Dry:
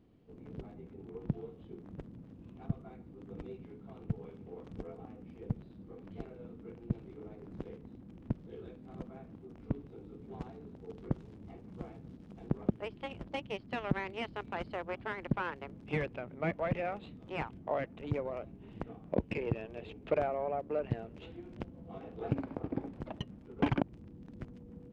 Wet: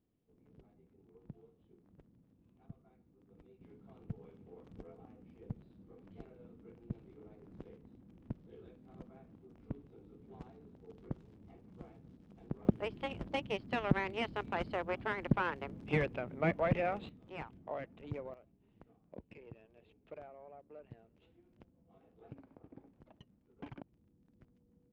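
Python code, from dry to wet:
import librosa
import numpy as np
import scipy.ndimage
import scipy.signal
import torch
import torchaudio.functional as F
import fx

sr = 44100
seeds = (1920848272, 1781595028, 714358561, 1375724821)

y = fx.gain(x, sr, db=fx.steps((0.0, -16.5), (3.61, -7.5), (12.65, 2.0), (17.09, -7.5), (18.34, -19.0)))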